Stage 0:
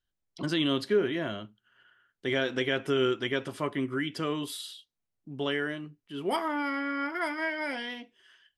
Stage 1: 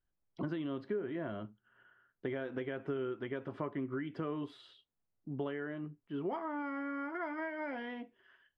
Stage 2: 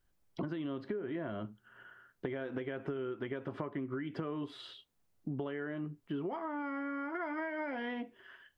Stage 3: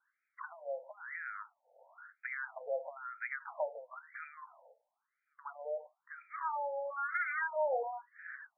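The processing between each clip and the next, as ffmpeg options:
-af "acompressor=threshold=0.0178:ratio=6,lowpass=1400,volume=1.12"
-af "acompressor=threshold=0.00562:ratio=6,volume=2.99"
-af "equalizer=f=1100:w=1.5:g=-6,afftfilt=real='re*between(b*sr/1024,620*pow(1800/620,0.5+0.5*sin(2*PI*1*pts/sr))/1.41,620*pow(1800/620,0.5+0.5*sin(2*PI*1*pts/sr))*1.41)':imag='im*between(b*sr/1024,620*pow(1800/620,0.5+0.5*sin(2*PI*1*pts/sr))/1.41,620*pow(1800/620,0.5+0.5*sin(2*PI*1*pts/sr))*1.41)':win_size=1024:overlap=0.75,volume=3.76"

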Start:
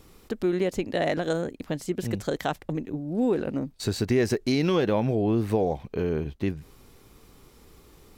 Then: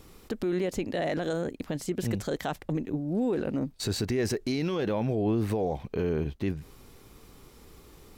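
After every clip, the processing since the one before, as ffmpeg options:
-af "alimiter=limit=0.0891:level=0:latency=1:release=24,volume=1.12"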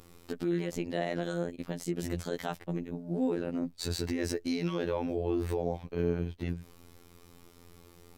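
-af "afftfilt=real='hypot(re,im)*cos(PI*b)':imag='0':win_size=2048:overlap=0.75"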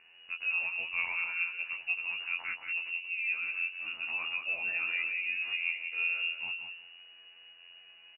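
-af "flanger=delay=16:depth=7.1:speed=1.5,lowpass=f=2500:t=q:w=0.5098,lowpass=f=2500:t=q:w=0.6013,lowpass=f=2500:t=q:w=0.9,lowpass=f=2500:t=q:w=2.563,afreqshift=-2900,aecho=1:1:180|360|540:0.447|0.0715|0.0114"

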